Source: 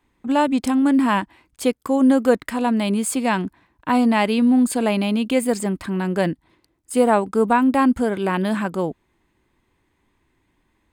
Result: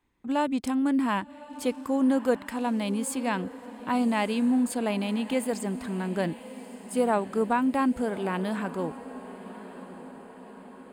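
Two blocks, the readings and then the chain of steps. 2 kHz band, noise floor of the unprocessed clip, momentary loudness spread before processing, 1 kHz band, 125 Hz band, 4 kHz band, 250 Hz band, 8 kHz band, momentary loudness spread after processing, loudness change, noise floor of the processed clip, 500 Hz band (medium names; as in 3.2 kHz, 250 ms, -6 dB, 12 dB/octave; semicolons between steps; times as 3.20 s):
-8.0 dB, -68 dBFS, 8 LU, -8.0 dB, -8.0 dB, -8.0 dB, -8.0 dB, -8.0 dB, 18 LU, -8.0 dB, -47 dBFS, -8.0 dB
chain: echo that smears into a reverb 1163 ms, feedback 56%, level -15 dB; trim -8 dB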